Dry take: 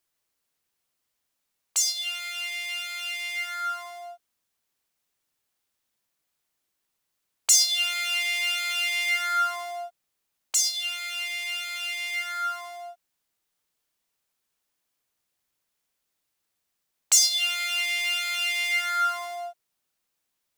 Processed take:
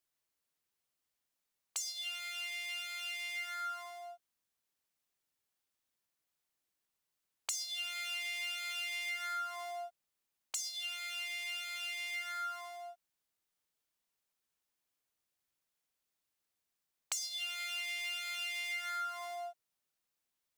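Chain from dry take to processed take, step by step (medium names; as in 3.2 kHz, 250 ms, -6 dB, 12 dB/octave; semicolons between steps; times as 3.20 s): compression 6:1, threshold -29 dBFS, peak gain reduction 14 dB; trim -7.5 dB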